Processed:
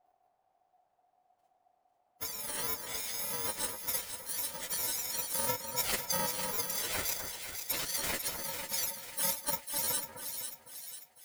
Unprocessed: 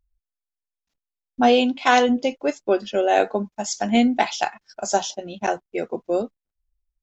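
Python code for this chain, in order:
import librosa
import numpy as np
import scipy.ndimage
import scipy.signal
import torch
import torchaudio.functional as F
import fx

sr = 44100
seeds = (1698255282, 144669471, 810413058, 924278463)

y = fx.bit_reversed(x, sr, seeds[0], block=128)
y = scipy.signal.sosfilt(scipy.signal.butter(4, 160.0, 'highpass', fs=sr, output='sos'), y)
y = fx.high_shelf(y, sr, hz=2600.0, db=-4.5)
y = fx.over_compress(y, sr, threshold_db=-28.0, ratio=-1.0)
y = fx.stretch_vocoder(y, sr, factor=1.6)
y = fx.granulator(y, sr, seeds[1], grain_ms=100.0, per_s=20.0, spray_ms=36.0, spread_st=3)
y = fx.dmg_noise_colour(y, sr, seeds[2], colour='brown', level_db=-71.0)
y = y * np.sin(2.0 * np.pi * 730.0 * np.arange(len(y)) / sr)
y = fx.echo_split(y, sr, split_hz=1800.0, low_ms=253, high_ms=496, feedback_pct=52, wet_db=-7.0)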